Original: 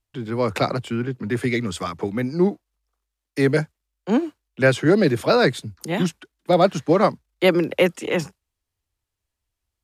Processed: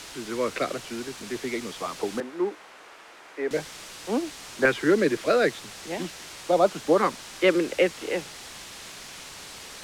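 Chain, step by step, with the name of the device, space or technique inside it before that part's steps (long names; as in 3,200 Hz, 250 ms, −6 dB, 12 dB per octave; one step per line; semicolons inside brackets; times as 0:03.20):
shortwave radio (band-pass filter 330–2,800 Hz; amplitude tremolo 0.41 Hz, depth 43%; auto-filter notch saw up 0.43 Hz 600–2,400 Hz; white noise bed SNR 10 dB)
low-pass filter 7,000 Hz 12 dB per octave
0:02.20–0:03.51: three-way crossover with the lows and the highs turned down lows −21 dB, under 300 Hz, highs −16 dB, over 2,300 Hz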